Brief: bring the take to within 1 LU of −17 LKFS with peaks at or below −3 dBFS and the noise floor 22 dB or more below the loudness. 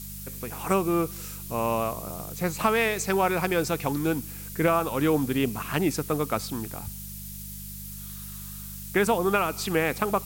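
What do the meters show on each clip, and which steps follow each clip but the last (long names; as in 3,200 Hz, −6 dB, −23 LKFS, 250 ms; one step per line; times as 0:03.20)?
mains hum 50 Hz; hum harmonics up to 200 Hz; level of the hum −39 dBFS; background noise floor −39 dBFS; target noise floor −49 dBFS; integrated loudness −27.0 LKFS; sample peak −9.5 dBFS; target loudness −17.0 LKFS
→ hum removal 50 Hz, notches 4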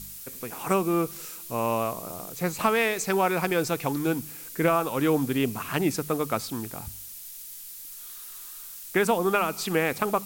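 mains hum none found; background noise floor −42 dBFS; target noise floor −49 dBFS
→ broadband denoise 7 dB, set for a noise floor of −42 dBFS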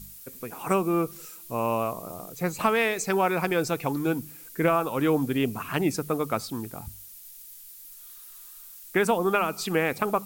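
background noise floor −46 dBFS; target noise floor −49 dBFS
→ broadband denoise 6 dB, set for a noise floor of −46 dBFS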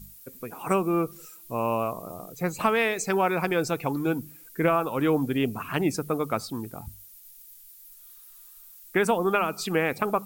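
background noise floor −50 dBFS; integrated loudness −26.5 LKFS; sample peak −9.5 dBFS; target loudness −17.0 LKFS
→ level +9.5 dB
brickwall limiter −3 dBFS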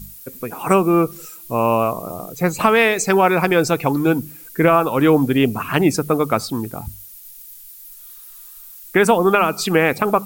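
integrated loudness −17.5 LKFS; sample peak −3.0 dBFS; background noise floor −40 dBFS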